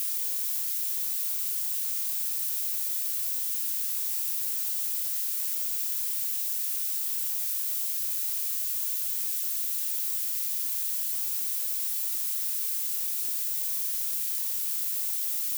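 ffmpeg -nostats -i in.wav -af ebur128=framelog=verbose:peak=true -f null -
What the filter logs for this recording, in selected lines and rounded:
Integrated loudness:
  I:         -26.4 LUFS
  Threshold: -36.4 LUFS
Loudness range:
  LRA:         0.0 LU
  Threshold: -46.4 LUFS
  LRA low:   -26.4 LUFS
  LRA high:  -26.4 LUFS
True peak:
  Peak:      -16.3 dBFS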